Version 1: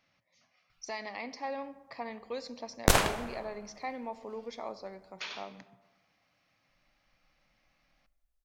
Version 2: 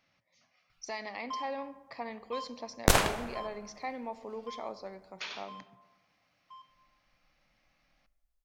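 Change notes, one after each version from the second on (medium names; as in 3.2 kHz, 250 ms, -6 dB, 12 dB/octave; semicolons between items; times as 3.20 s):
first sound: unmuted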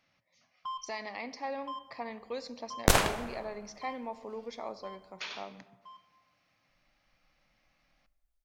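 first sound: entry -0.65 s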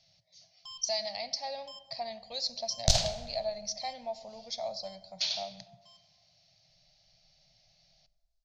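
speech +8.0 dB; first sound: remove distance through air 210 m; master: add FFT filter 160 Hz 0 dB, 280 Hz -26 dB, 410 Hz -29 dB, 650 Hz +1 dB, 1.1 kHz -23 dB, 2.5 kHz -10 dB, 4.4 kHz +9 dB, 6.4 kHz +4 dB, 10 kHz -19 dB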